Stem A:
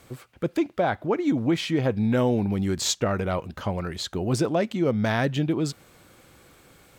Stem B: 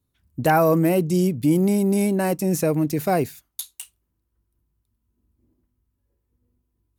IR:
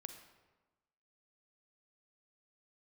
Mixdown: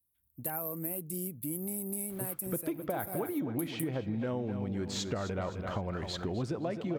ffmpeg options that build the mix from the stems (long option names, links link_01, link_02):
-filter_complex "[0:a]lowpass=frequency=2600:poles=1,adelay=2100,volume=-3dB,asplit=3[link_01][link_02][link_03];[link_02]volume=-5.5dB[link_04];[link_03]volume=-8dB[link_05];[1:a]aexciter=amount=10.6:drive=6.8:freq=8800,volume=-18dB[link_06];[2:a]atrim=start_sample=2205[link_07];[link_04][link_07]afir=irnorm=-1:irlink=0[link_08];[link_05]aecho=0:1:259|518|777|1036|1295:1|0.37|0.137|0.0507|0.0187[link_09];[link_01][link_06][link_08][link_09]amix=inputs=4:normalize=0,acompressor=threshold=-32dB:ratio=5"